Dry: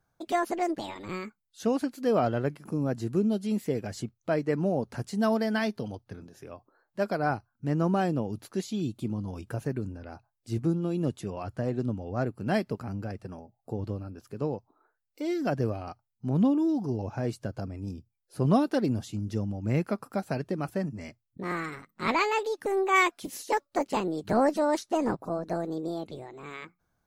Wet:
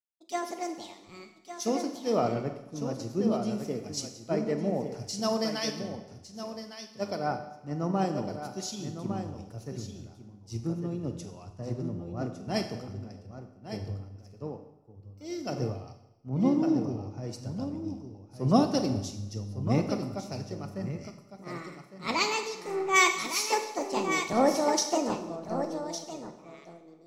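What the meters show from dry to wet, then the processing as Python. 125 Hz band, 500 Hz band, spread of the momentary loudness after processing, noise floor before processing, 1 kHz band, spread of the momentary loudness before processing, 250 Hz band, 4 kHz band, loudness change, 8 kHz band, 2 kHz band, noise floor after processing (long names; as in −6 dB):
−3.0 dB, −2.0 dB, 18 LU, −80 dBFS, −1.5 dB, 16 LU, −2.0 dB, +6.5 dB, −1.0 dB, +10.0 dB, 0.0 dB, −55 dBFS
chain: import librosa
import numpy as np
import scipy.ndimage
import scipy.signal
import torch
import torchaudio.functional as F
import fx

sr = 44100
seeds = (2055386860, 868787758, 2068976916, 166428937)

p1 = fx.peak_eq(x, sr, hz=5600.0, db=14.0, octaves=0.49)
p2 = fx.notch(p1, sr, hz=1600.0, q=5.4)
p3 = p2 + fx.echo_single(p2, sr, ms=1157, db=-5.5, dry=0)
p4 = fx.rev_schroeder(p3, sr, rt60_s=1.8, comb_ms=31, drr_db=5.5)
p5 = fx.band_widen(p4, sr, depth_pct=100)
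y = p5 * 10.0 ** (-5.0 / 20.0)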